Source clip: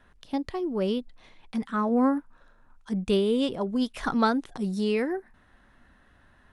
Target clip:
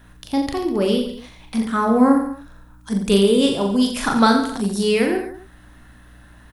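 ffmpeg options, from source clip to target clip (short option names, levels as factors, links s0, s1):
-af "aemphasis=mode=production:type=50fm,aeval=exprs='val(0)+0.00178*(sin(2*PI*60*n/s)+sin(2*PI*2*60*n/s)/2+sin(2*PI*3*60*n/s)/3+sin(2*PI*4*60*n/s)/4+sin(2*PI*5*60*n/s)/5)':c=same,aecho=1:1:40|86|138.9|199.7|269.7:0.631|0.398|0.251|0.158|0.1,volume=2.11"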